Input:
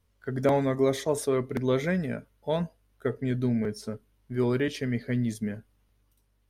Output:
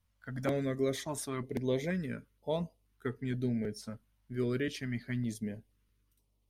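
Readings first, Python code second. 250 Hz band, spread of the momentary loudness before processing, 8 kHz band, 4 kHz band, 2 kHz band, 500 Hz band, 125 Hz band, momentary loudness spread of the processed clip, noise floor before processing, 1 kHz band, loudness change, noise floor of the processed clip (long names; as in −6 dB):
−6.5 dB, 11 LU, −4.0 dB, −4.5 dB, −6.0 dB, −8.5 dB, −6.5 dB, 11 LU, −70 dBFS, −10.0 dB, −7.5 dB, −75 dBFS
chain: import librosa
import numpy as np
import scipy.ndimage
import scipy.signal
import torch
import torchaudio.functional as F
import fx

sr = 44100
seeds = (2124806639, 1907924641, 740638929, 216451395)

y = fx.hpss(x, sr, part='percussive', gain_db=3)
y = fx.filter_held_notch(y, sr, hz=2.1, low_hz=390.0, high_hz=1600.0)
y = y * 10.0 ** (-6.5 / 20.0)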